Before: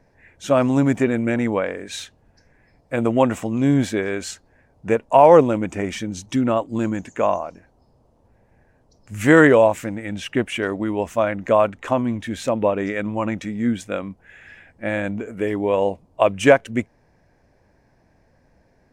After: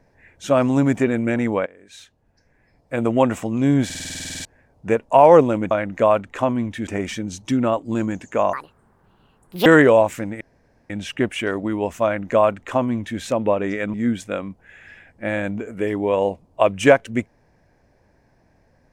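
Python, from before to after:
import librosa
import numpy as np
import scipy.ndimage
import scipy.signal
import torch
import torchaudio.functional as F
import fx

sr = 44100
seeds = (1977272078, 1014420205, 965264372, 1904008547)

y = fx.edit(x, sr, fx.fade_in_from(start_s=1.66, length_s=1.49, floor_db=-22.5),
    fx.stutter_over(start_s=3.85, slice_s=0.05, count=12),
    fx.speed_span(start_s=7.37, length_s=1.94, speed=1.72),
    fx.insert_room_tone(at_s=10.06, length_s=0.49),
    fx.duplicate(start_s=11.2, length_s=1.16, to_s=5.71),
    fx.cut(start_s=13.1, length_s=0.44), tone=tone)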